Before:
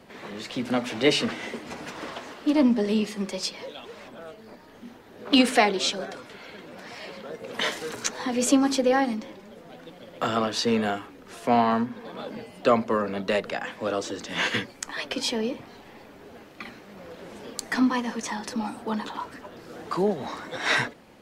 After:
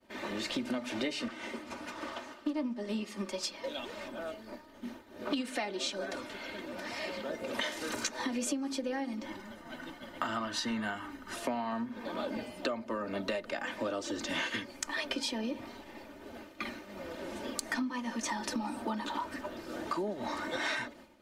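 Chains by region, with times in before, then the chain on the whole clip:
1.28–3.64 s: peaking EQ 1.2 kHz +4 dB 0.64 oct + upward expansion, over -31 dBFS
9.25–11.36 s: peaking EQ 1.5 kHz +13.5 dB 0.23 oct + hum notches 60/120/180/240/300/360/420/480/540/600 Hz + comb 1 ms, depth 51%
whole clip: expander -43 dBFS; comb 3.3 ms, depth 64%; compression 16:1, threshold -31 dBFS

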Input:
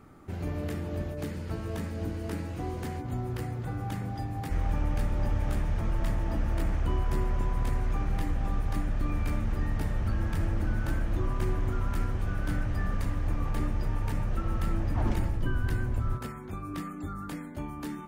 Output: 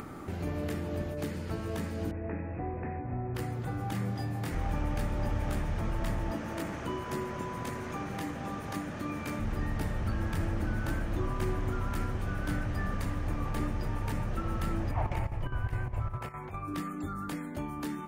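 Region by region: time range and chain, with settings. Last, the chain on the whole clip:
2.11–3.35 s: rippled Chebyshev low-pass 2.6 kHz, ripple 6 dB + bass shelf 170 Hz +7 dB
3.92–4.55 s: high-pass 85 Hz + doubling 26 ms -3 dB
6.31–9.39 s: high-pass 150 Hz + peaking EQ 6.4 kHz +3 dB 0.27 oct + band-stop 750 Hz, Q 18
14.91–16.68 s: FFT filter 140 Hz 0 dB, 230 Hz -12 dB, 700 Hz +3 dB, 1 kHz +3 dB, 1.5 kHz -4 dB, 2.3 kHz +3 dB, 3.7 kHz -8 dB + square tremolo 4.9 Hz, depth 65%, duty 75%
whole clip: bass shelf 81 Hz -8 dB; upward compressor, threshold -34 dBFS; trim +1 dB

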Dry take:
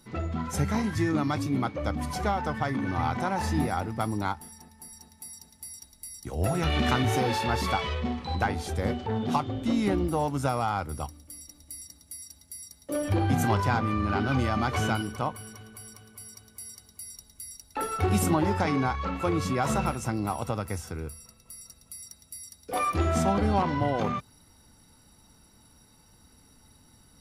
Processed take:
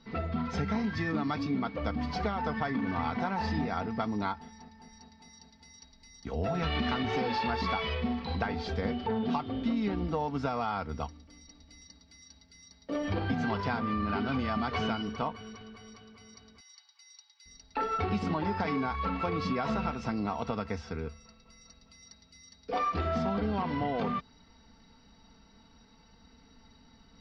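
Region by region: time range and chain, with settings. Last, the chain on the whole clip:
16.60–17.46 s: steep high-pass 780 Hz 96 dB/octave + peaking EQ 1.2 kHz -5.5 dB 1.5 oct
whole clip: Chebyshev low-pass 4.9 kHz, order 4; comb 4.4 ms, depth 56%; compression, threshold -27 dBFS

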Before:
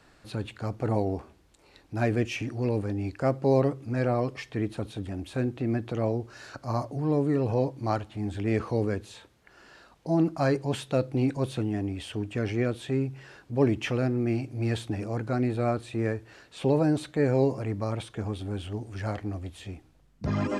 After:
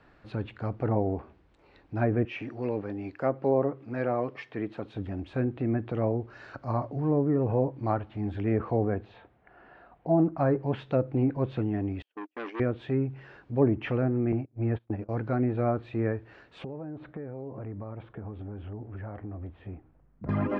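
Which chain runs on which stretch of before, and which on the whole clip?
2.25–4.94 s: high-pass 100 Hz + bass shelf 180 Hz -10.5 dB
8.71–10.23 s: low-pass 3.7 kHz 6 dB/octave + level-controlled noise filter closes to 2.6 kHz, open at -21 dBFS + peaking EQ 720 Hz +11 dB 0.22 oct
12.02–12.60 s: steep high-pass 250 Hz 72 dB/octave + gate -36 dBFS, range -41 dB + transformer saturation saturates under 1.7 kHz
14.32–15.09 s: low-pass 1.3 kHz 6 dB/octave + gate -33 dBFS, range -25 dB
16.64–20.29 s: compression 10:1, threshold -34 dBFS + low-pass 1.6 kHz
whole clip: low-pass that closes with the level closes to 1.3 kHz, closed at -20.5 dBFS; low-pass 2.4 kHz 12 dB/octave

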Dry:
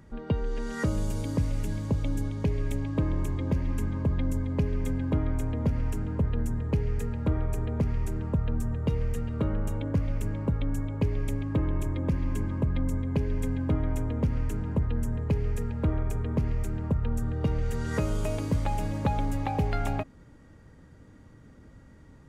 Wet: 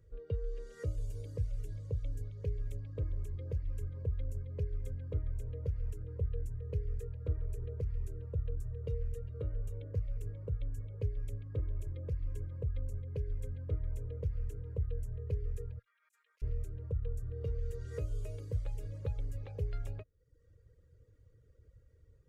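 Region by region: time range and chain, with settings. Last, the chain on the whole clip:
15.79–16.42 s: high-pass 1.4 kHz 24 dB/octave + compressor with a negative ratio -54 dBFS, ratio -0.5
whole clip: FFT filter 110 Hz 0 dB, 230 Hz -21 dB, 480 Hz +8 dB, 780 Hz -22 dB, 1.3 kHz -16 dB, 2 kHz -18 dB; reverb removal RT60 0.73 s; amplifier tone stack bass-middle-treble 5-5-5; trim +8.5 dB

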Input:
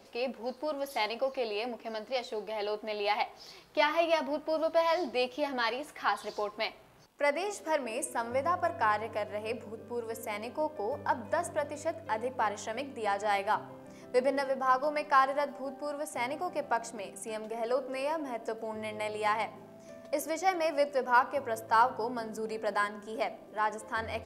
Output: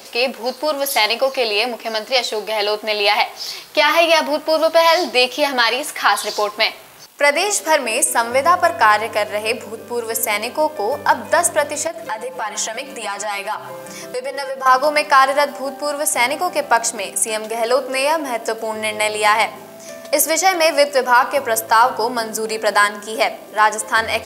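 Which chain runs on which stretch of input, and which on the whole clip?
11.87–14.66 s: comb 5.8 ms, depth 93% + compression 3:1, threshold -41 dBFS
whole clip: tilt EQ +3 dB/octave; loudness maximiser +17.5 dB; trim -1 dB

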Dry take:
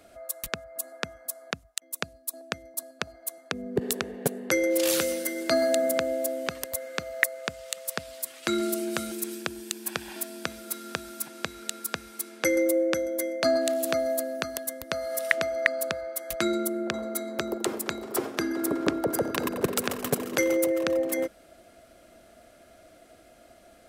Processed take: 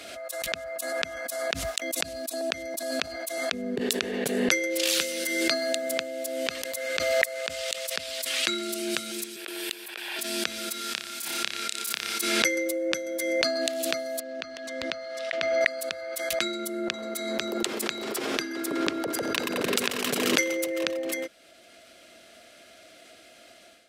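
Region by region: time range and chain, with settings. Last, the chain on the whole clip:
9.36–10.19 s: peaking EQ 6.4 kHz -12 dB 1.2 oct + compressor with a negative ratio -36 dBFS, ratio -0.5 + high-pass 410 Hz 24 dB/octave
10.78–12.20 s: bass shelf 130 Hz -7 dB + compression 3:1, threshold -34 dBFS + flutter echo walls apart 5.1 m, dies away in 0.44 s
14.20–15.61 s: compression 2:1, threshold -34 dBFS + distance through air 140 m
whole clip: level rider; frequency weighting D; swell ahead of each attack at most 28 dB/s; trim -11.5 dB

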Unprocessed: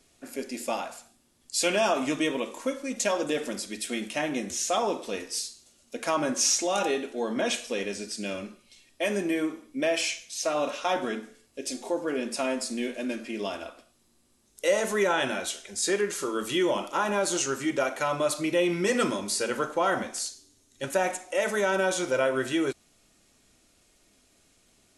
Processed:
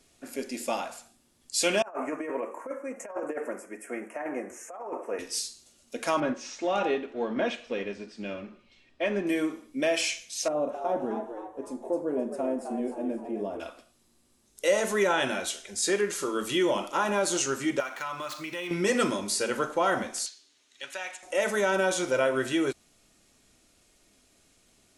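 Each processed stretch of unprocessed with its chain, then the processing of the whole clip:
1.82–5.19 s: three-band isolator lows -21 dB, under 340 Hz, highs -14 dB, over 2.3 kHz + compressor with a negative ratio -32 dBFS, ratio -0.5 + Butterworth band-stop 3.9 kHz, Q 0.73
6.20–9.27 s: companding laws mixed up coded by mu + low-pass 2.8 kHz + upward expansion, over -37 dBFS
10.48–13.60 s: FFT filter 600 Hz 0 dB, 2.8 kHz -22 dB, 4.8 kHz -25 dB, 9.2 kHz -15 dB + frequency-shifting echo 262 ms, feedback 39%, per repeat +100 Hz, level -8 dB
17.80–18.71 s: median filter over 5 samples + resonant low shelf 790 Hz -7.5 dB, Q 1.5 + compression 2:1, threshold -34 dBFS
20.26–21.23 s: band-pass filter 3 kHz, Q 1.1 + three bands compressed up and down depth 40%
whole clip: none

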